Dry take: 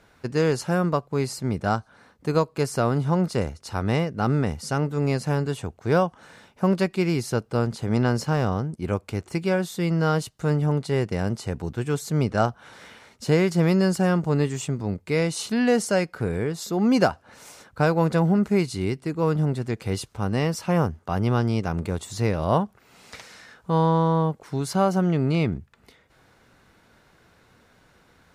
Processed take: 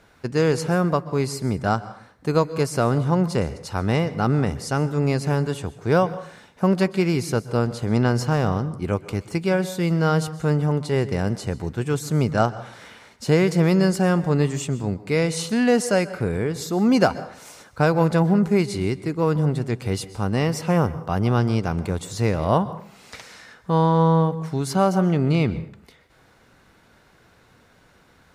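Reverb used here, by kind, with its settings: plate-style reverb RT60 0.53 s, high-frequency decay 0.75×, pre-delay 115 ms, DRR 15.5 dB; trim +2 dB

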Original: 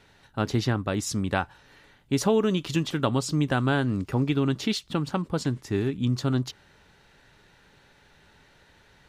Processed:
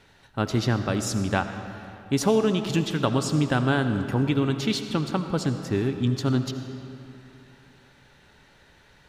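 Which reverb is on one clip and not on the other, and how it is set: algorithmic reverb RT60 2.9 s, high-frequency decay 0.7×, pre-delay 40 ms, DRR 8 dB; trim +1 dB

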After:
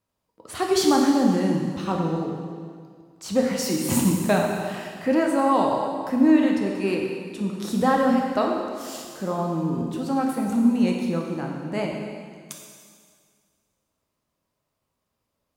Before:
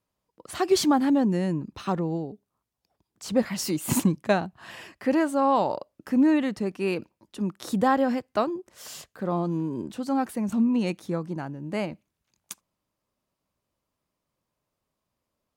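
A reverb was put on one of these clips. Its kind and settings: plate-style reverb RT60 2 s, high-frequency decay 0.95×, DRR -0.5 dB

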